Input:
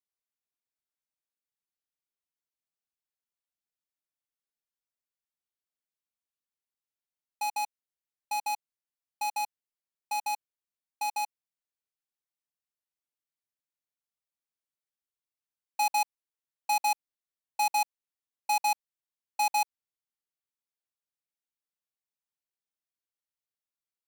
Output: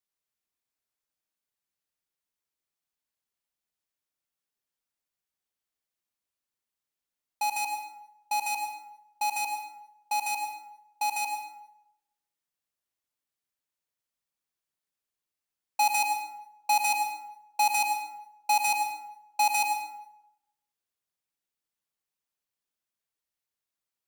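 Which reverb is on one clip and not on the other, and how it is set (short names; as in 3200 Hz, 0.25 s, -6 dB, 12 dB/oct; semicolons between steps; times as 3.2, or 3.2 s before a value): plate-style reverb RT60 0.87 s, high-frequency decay 0.65×, pre-delay 80 ms, DRR 4.5 dB; gain +3 dB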